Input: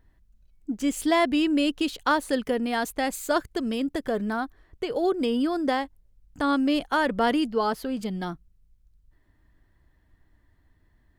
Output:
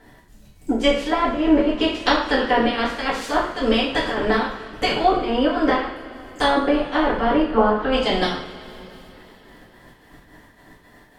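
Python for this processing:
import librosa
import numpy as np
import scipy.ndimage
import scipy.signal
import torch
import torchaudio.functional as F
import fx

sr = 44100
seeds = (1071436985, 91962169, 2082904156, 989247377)

y = fx.spec_clip(x, sr, under_db=22)
y = fx.env_lowpass_down(y, sr, base_hz=930.0, full_db=-19.0)
y = fx.lowpass(y, sr, hz=1800.0, slope=12, at=(7.46, 7.91), fade=0.02)
y = fx.rider(y, sr, range_db=3, speed_s=0.5)
y = fx.chopper(y, sr, hz=3.6, depth_pct=65, duty_pct=70)
y = fx.rev_double_slope(y, sr, seeds[0], early_s=0.51, late_s=3.9, knee_db=-21, drr_db=-7.5)
y = y * librosa.db_to_amplitude(1.5)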